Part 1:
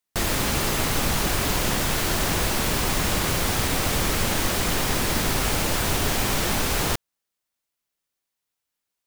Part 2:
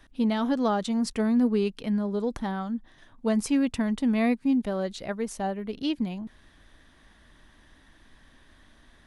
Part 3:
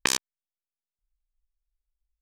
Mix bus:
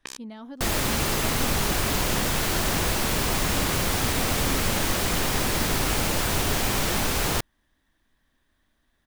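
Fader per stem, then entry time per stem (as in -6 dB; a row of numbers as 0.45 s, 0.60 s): -1.0 dB, -14.5 dB, -14.5 dB; 0.45 s, 0.00 s, 0.00 s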